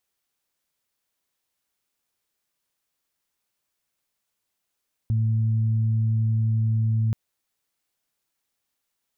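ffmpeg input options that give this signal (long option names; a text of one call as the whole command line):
ffmpeg -f lavfi -i "aevalsrc='0.112*sin(2*PI*111*t)+0.02*sin(2*PI*222*t)':duration=2.03:sample_rate=44100" out.wav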